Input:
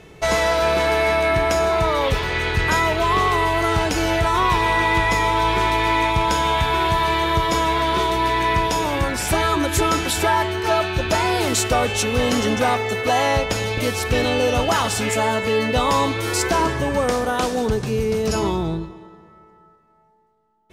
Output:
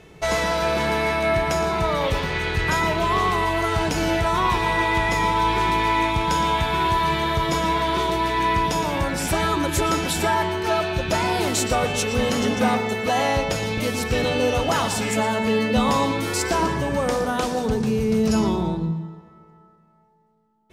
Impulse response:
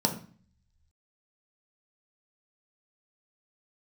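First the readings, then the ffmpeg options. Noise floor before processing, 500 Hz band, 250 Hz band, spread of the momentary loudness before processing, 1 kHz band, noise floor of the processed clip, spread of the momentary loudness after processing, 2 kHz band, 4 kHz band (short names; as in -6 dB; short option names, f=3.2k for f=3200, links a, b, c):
-52 dBFS, -2.5 dB, +0.5 dB, 4 LU, -2.0 dB, -53 dBFS, 3 LU, -3.0 dB, -3.0 dB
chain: -filter_complex "[0:a]asplit=2[a][b];[b]lowshelf=f=120:t=q:w=3:g=-8.5[c];[1:a]atrim=start_sample=2205,adelay=116[d];[c][d]afir=irnorm=-1:irlink=0,volume=-21.5dB[e];[a][e]amix=inputs=2:normalize=0,volume=-3dB"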